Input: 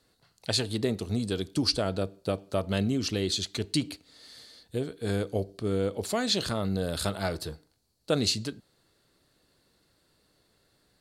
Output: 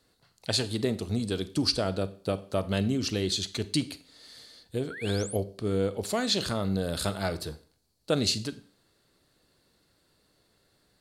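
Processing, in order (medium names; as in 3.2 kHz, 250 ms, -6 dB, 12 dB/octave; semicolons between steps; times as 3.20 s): Schroeder reverb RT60 0.45 s, combs from 31 ms, DRR 15 dB; painted sound rise, 4.90–5.37 s, 1.3–12 kHz -41 dBFS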